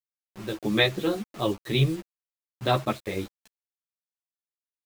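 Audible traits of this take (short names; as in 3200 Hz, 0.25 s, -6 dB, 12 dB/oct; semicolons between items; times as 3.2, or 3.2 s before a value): random-step tremolo; a quantiser's noise floor 8-bit, dither none; a shimmering, thickened sound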